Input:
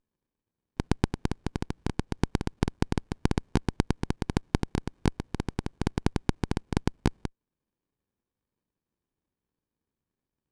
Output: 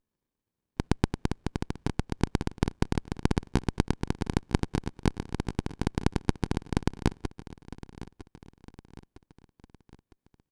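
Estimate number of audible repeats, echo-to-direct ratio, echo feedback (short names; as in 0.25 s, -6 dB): 4, -15.0 dB, 49%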